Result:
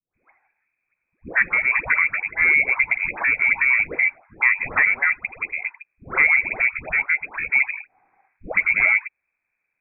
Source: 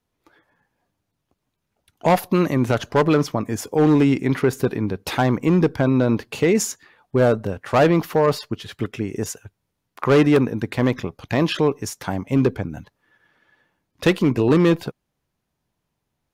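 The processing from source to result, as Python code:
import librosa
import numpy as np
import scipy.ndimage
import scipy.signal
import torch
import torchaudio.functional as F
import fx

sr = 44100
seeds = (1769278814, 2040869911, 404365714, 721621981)

y = fx.stretch_grains(x, sr, factor=0.6, grain_ms=23.0)
y = fx.freq_invert(y, sr, carrier_hz=2500)
y = fx.dispersion(y, sr, late='highs', ms=149.0, hz=710.0)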